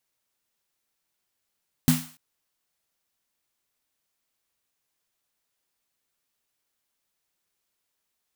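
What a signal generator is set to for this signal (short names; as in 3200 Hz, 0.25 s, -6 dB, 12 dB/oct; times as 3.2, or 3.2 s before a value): snare drum length 0.29 s, tones 160 Hz, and 250 Hz, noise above 690 Hz, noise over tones -8 dB, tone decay 0.31 s, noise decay 0.47 s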